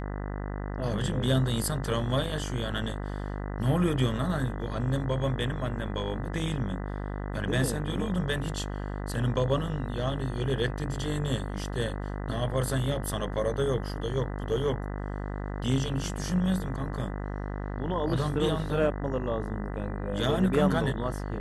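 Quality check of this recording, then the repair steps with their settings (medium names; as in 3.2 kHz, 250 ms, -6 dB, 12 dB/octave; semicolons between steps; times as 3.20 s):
buzz 50 Hz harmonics 40 -34 dBFS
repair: de-hum 50 Hz, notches 40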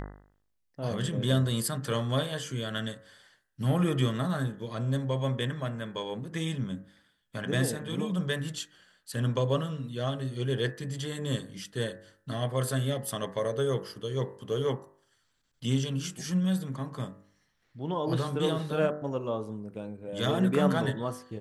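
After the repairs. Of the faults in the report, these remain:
nothing left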